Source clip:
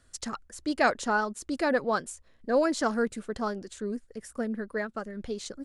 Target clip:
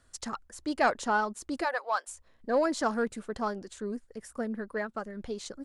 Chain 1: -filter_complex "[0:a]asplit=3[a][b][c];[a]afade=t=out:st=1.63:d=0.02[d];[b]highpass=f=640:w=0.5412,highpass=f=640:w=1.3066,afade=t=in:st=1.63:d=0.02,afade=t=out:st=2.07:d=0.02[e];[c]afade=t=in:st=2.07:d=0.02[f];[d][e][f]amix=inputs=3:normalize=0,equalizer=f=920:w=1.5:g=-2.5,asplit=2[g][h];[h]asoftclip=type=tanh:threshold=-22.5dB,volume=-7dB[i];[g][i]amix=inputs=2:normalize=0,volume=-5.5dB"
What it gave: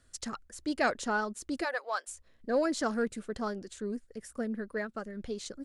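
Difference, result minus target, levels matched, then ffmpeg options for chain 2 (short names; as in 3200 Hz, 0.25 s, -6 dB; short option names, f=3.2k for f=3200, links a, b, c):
1000 Hz band -3.0 dB
-filter_complex "[0:a]asplit=3[a][b][c];[a]afade=t=out:st=1.63:d=0.02[d];[b]highpass=f=640:w=0.5412,highpass=f=640:w=1.3066,afade=t=in:st=1.63:d=0.02,afade=t=out:st=2.07:d=0.02[e];[c]afade=t=in:st=2.07:d=0.02[f];[d][e][f]amix=inputs=3:normalize=0,equalizer=f=920:w=1.5:g=5,asplit=2[g][h];[h]asoftclip=type=tanh:threshold=-22.5dB,volume=-7dB[i];[g][i]amix=inputs=2:normalize=0,volume=-5.5dB"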